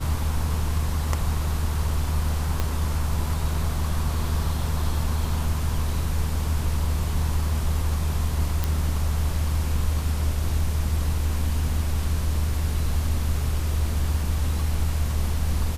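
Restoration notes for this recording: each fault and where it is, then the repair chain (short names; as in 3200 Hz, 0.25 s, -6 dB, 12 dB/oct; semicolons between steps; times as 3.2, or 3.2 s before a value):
2.6 pop -11 dBFS
8.64 pop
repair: de-click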